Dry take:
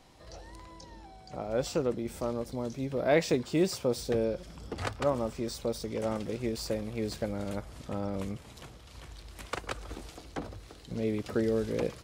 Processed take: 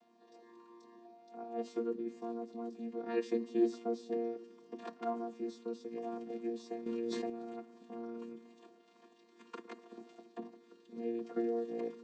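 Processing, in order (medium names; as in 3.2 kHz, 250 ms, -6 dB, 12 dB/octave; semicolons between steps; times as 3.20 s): vocoder on a held chord bare fifth, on A#3; hum notches 60/120/180/240 Hz; reverberation RT60 0.95 s, pre-delay 3 ms, DRR 18 dB; 6.86–7.30 s: level flattener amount 100%; trim -6 dB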